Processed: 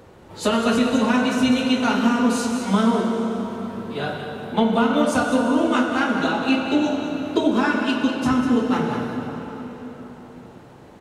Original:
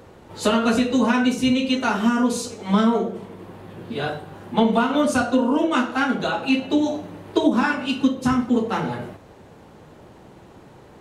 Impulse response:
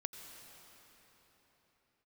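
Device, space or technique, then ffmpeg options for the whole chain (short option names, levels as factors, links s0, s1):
cave: -filter_complex "[0:a]aecho=1:1:196:0.335[s0];[1:a]atrim=start_sample=2205[s1];[s0][s1]afir=irnorm=-1:irlink=0,volume=1.26"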